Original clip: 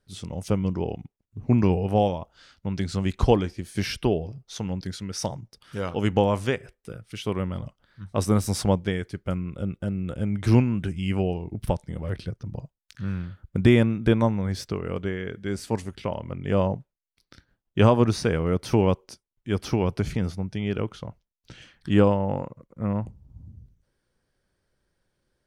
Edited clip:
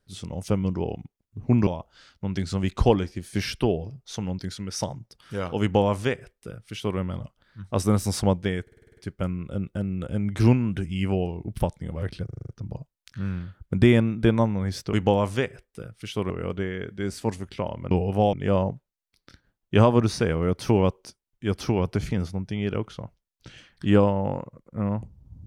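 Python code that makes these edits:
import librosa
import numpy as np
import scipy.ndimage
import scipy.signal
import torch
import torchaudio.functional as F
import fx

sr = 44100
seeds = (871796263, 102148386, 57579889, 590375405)

y = fx.edit(x, sr, fx.move(start_s=1.67, length_s=0.42, to_s=16.37),
    fx.duplicate(start_s=6.03, length_s=1.37, to_s=14.76),
    fx.stutter(start_s=9.04, slice_s=0.05, count=8),
    fx.stutter(start_s=12.32, slice_s=0.04, count=7), tone=tone)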